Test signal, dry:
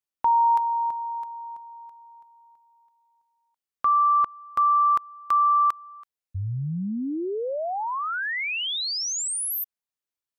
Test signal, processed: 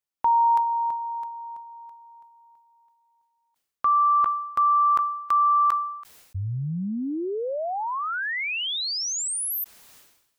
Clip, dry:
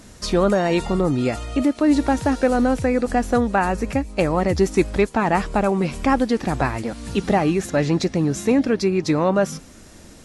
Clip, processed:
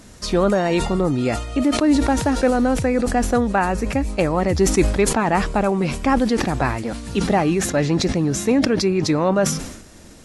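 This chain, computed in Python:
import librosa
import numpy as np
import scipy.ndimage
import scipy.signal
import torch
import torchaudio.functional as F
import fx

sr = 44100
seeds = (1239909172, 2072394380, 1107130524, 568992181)

y = fx.sustainer(x, sr, db_per_s=65.0)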